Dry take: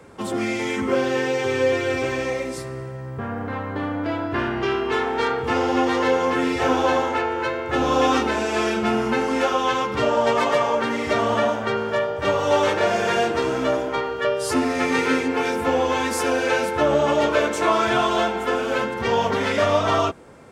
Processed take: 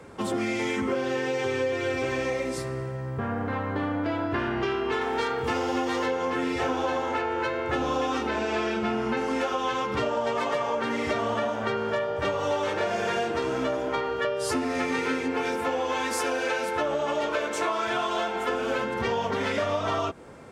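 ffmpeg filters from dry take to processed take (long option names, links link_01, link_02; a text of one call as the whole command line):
ffmpeg -i in.wav -filter_complex "[0:a]asettb=1/sr,asplit=3[link_01][link_02][link_03];[link_01]atrim=end=5.014[link_04];[link_02]atrim=start=5.01:end=6.06,asetpts=PTS-STARTPTS,afade=type=in:duration=0.004:curve=qsin,afade=type=out:start_time=1.046:duration=0.004:curve=qsin,highshelf=frequency=5700:gain=9.5[link_05];[link_03]atrim=start=6.056[link_06];[link_04][link_05]acrossfade=duration=0.004:curve1=hsin:curve2=qsin[link_07];[link_07][link_06]acrossfade=duration=0.004:curve1=qsin:curve2=hsin,asettb=1/sr,asplit=3[link_08][link_09][link_10];[link_08]atrim=end=8.274[link_11];[link_09]atrim=start=8.27:end=9.17,asetpts=PTS-STARTPTS,afade=type=in:duration=0.004:curve=qsin,afade=type=out:start_time=0.896:duration=0.004:curve=qsin,acrossover=split=5700[link_12][link_13];[link_13]acompressor=threshold=-54dB:ratio=4:attack=1:release=60[link_14];[link_12][link_14]amix=inputs=2:normalize=0[link_15];[link_10]atrim=start=9.166[link_16];[link_11][link_15]acrossfade=duration=0.004:curve1=hsin:curve2=qsin[link_17];[link_17][link_16]acrossfade=duration=0.004:curve1=qsin:curve2=hsin,asettb=1/sr,asplit=3[link_18][link_19][link_20];[link_18]atrim=end=15.564[link_21];[link_19]atrim=start=15.56:end=18.49,asetpts=PTS-STARTPTS,afade=type=in:duration=0.004:curve=qsin,afade=type=out:start_time=2.926:duration=0.004:curve=qsin,lowshelf=frequency=250:gain=-9.5[link_22];[link_20]atrim=start=18.486[link_23];[link_21][link_22]acrossfade=duration=0.004:curve1=hsin:curve2=qsin[link_24];[link_24][link_23]acrossfade=duration=0.004:curve1=qsin:curve2=hsin,highshelf=frequency=9900:gain=-4,acompressor=threshold=-24dB:ratio=6" out.wav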